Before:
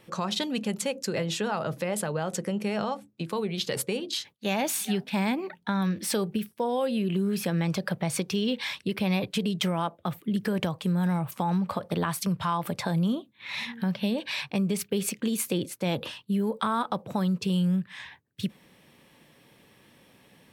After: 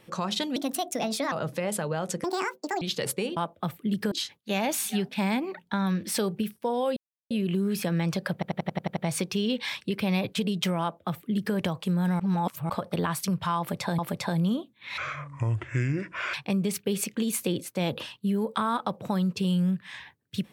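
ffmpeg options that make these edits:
-filter_complex "[0:a]asplit=20[a][b][c][d][e][f][g][h][i][j][k][l][m][n][o][p][q][r][s][t];[a]atrim=end=0.564[u];[b]atrim=start=0.56:end=1.56,asetpts=PTS-STARTPTS,asetrate=58212,aresample=44100,atrim=end_sample=33409,asetpts=PTS-STARTPTS[v];[c]atrim=start=1.556:end=2.484[w];[d]atrim=start=2.48:end=3.52,asetpts=PTS-STARTPTS,asetrate=79380,aresample=44100[x];[e]atrim=start=3.516:end=4.072[y];[f]atrim=start=9.788:end=10.542[z];[g]atrim=start=4.068:end=6.92,asetpts=PTS-STARTPTS,afade=t=out:st=2.848:d=0.004:c=hsin,apad=pad_dur=0.34[aa];[h]atrim=start=6.92:end=8.042,asetpts=PTS-STARTPTS,afade=t=in:d=0.004:c=hsin[ab];[i]atrim=start=7.948:end=8.042[ac];[j]atrim=start=7.948:end=8.042[ad];[k]atrim=start=7.948:end=8.042[ae];[l]atrim=start=7.948:end=8.042[af];[m]atrim=start=7.948:end=8.042[ag];[n]atrim=start=7.948:end=8.042[ah];[o]atrim=start=7.948:end=11.182[ai];[p]atrim=start=11.178:end=11.682,asetpts=PTS-STARTPTS,areverse[aj];[q]atrim=start=11.678:end=12.972[ak];[r]atrim=start=12.568:end=13.564[al];[s]atrim=start=13.56:end=14.39,asetpts=PTS-STARTPTS,asetrate=26901,aresample=44100[am];[t]atrim=start=14.386[an];[u][v]acrossfade=d=0.004:c1=hsin:c2=hsin[ao];[ao][w]acrossfade=d=0.004:c1=hsin:c2=hsin[ap];[ap][x]acrossfade=d=0.004:c1=hsin:c2=hsin[aq];[aq][y]acrossfade=d=0.004:c1=hsin:c2=hsin[ar];[ar][z]acrossfade=d=0.004:c1=hsin:c2=hsin[as];[aa][ab]concat=n=2:v=0:a=1[at];[as][at]acrossfade=d=0.004:c1=hsin:c2=hsin[au];[au][ac]acrossfade=d=0.004:c1=hsin:c2=hsin[av];[av][ad]acrossfade=d=0.004:c1=hsin:c2=hsin[aw];[aw][ae]acrossfade=d=0.004:c1=hsin:c2=hsin[ax];[ax][af]acrossfade=d=0.004:c1=hsin:c2=hsin[ay];[ay][ag]acrossfade=d=0.004:c1=hsin:c2=hsin[az];[az][ah]acrossfade=d=0.004:c1=hsin:c2=hsin[ba];[ba][ai]acrossfade=d=0.004:c1=hsin:c2=hsin[bb];[bb][aj]acrossfade=d=0.004:c1=hsin:c2=hsin[bc];[bc][ak]acrossfade=d=0.004:c1=hsin:c2=hsin[bd];[bd][al]acrossfade=d=0.004:c1=hsin:c2=hsin[be];[be][am]acrossfade=d=0.004:c1=hsin:c2=hsin[bf];[bf][an]acrossfade=d=0.004:c1=hsin:c2=hsin"

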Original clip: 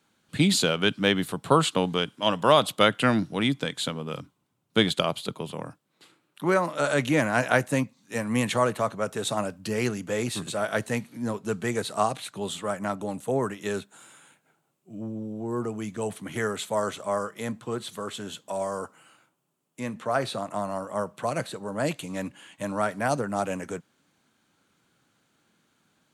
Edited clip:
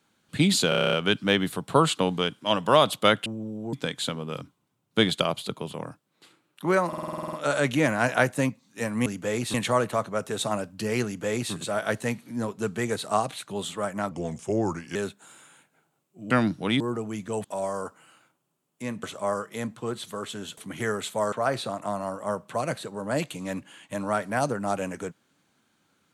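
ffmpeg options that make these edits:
-filter_complex "[0:a]asplit=30[a][b][c][d][e][f][g][h][i][j][k][l][m][n][o][p][q][r][s][t][u][v][w][x][y][z][aa][ab][ac][ad];[a]atrim=end=0.722[ae];[b]atrim=start=0.688:end=0.722[af];[c]atrim=start=0.688:end=0.722[ag];[d]atrim=start=0.688:end=0.722[ah];[e]atrim=start=0.688:end=0.722[ai];[f]atrim=start=0.688:end=0.722[aj];[g]atrim=start=0.688:end=0.722[ak];[h]atrim=start=0.688:end=0.722[al];[i]atrim=start=0.688:end=3.022[am];[j]atrim=start=15.018:end=15.492[an];[k]atrim=start=3.518:end=6.722[ao];[l]atrim=start=6.668:end=6.722[ap];[m]atrim=start=6.668:end=6.722[aq];[n]atrim=start=6.668:end=6.722[ar];[o]atrim=start=6.668:end=6.722[as];[p]atrim=start=6.668:end=6.722[at];[q]atrim=start=6.668:end=6.722[au];[r]atrim=start=6.668:end=6.722[av];[s]atrim=start=6.668:end=6.722[aw];[t]atrim=start=6.668:end=8.402[ax];[u]atrim=start=9.908:end=10.392[ay];[v]atrim=start=8.398:end=12.974[az];[w]atrim=start=12.97:end=13.67,asetpts=PTS-STARTPTS,asetrate=36603,aresample=44100[ba];[x]atrim=start=13.666:end=15.022[bb];[y]atrim=start=3.018:end=3.522[bc];[z]atrim=start=15.488:end=16.132[bd];[aa]atrim=start=18.418:end=20.012[be];[ab]atrim=start=16.878:end=18.422[bf];[ac]atrim=start=16.128:end=16.882[bg];[ad]atrim=start=20.008[bh];[ae][af]acrossfade=d=0.004:c1=hsin:c2=hsin[bi];[bi][ag]acrossfade=d=0.004:c1=hsin:c2=hsin[bj];[bj][ah]acrossfade=d=0.004:c1=hsin:c2=hsin[bk];[bk][ai]acrossfade=d=0.004:c1=hsin:c2=hsin[bl];[bl][aj]acrossfade=d=0.004:c1=hsin:c2=hsin[bm];[bm][ak]acrossfade=d=0.004:c1=hsin:c2=hsin[bn];[bn][al]acrossfade=d=0.004:c1=hsin:c2=hsin[bo];[bo][am]acrossfade=d=0.004:c1=hsin:c2=hsin[bp];[bp][an]acrossfade=d=0.004:c1=hsin:c2=hsin[bq];[bq][ao]acrossfade=d=0.004:c1=hsin:c2=hsin[br];[br][ap]acrossfade=d=0.004:c1=hsin:c2=hsin[bs];[bs][aq]acrossfade=d=0.004:c1=hsin:c2=hsin[bt];[bt][ar]acrossfade=d=0.004:c1=hsin:c2=hsin[bu];[bu][as]acrossfade=d=0.004:c1=hsin:c2=hsin[bv];[bv][at]acrossfade=d=0.004:c1=hsin:c2=hsin[bw];[bw][au]acrossfade=d=0.004:c1=hsin:c2=hsin[bx];[bx][av]acrossfade=d=0.004:c1=hsin:c2=hsin[by];[by][aw]acrossfade=d=0.004:c1=hsin:c2=hsin[bz];[bz][ax]acrossfade=d=0.004:c1=hsin:c2=hsin[ca];[ca][ay]acrossfade=d=0.004:c1=hsin:c2=hsin[cb];[cb][az]acrossfade=d=0.004:c1=hsin:c2=hsin[cc];[cc][ba]acrossfade=d=0.004:c1=hsin:c2=hsin[cd];[cd][bb]acrossfade=d=0.004:c1=hsin:c2=hsin[ce];[ce][bc]acrossfade=d=0.004:c1=hsin:c2=hsin[cf];[cf][bd]acrossfade=d=0.004:c1=hsin:c2=hsin[cg];[cg][be]acrossfade=d=0.004:c1=hsin:c2=hsin[ch];[ch][bf]acrossfade=d=0.004:c1=hsin:c2=hsin[ci];[ci][bg]acrossfade=d=0.004:c1=hsin:c2=hsin[cj];[cj][bh]acrossfade=d=0.004:c1=hsin:c2=hsin"

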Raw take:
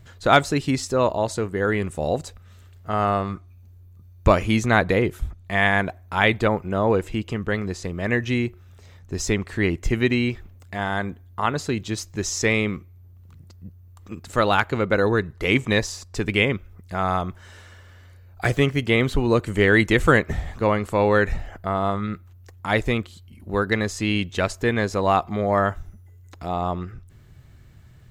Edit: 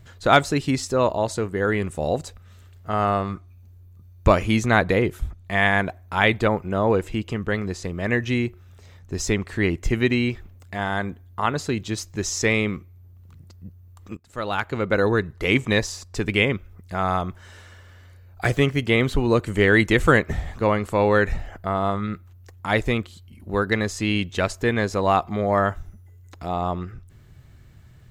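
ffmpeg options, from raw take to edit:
-filter_complex "[0:a]asplit=2[a][b];[a]atrim=end=14.17,asetpts=PTS-STARTPTS,afade=t=out:st=14.166:d=0.004:c=hsin:silence=0.0707946[c];[b]atrim=start=14.17,asetpts=PTS-STARTPTS,afade=t=in:d=0.83:silence=0.0707946[d];[c][d]concat=n=2:v=0:a=1"

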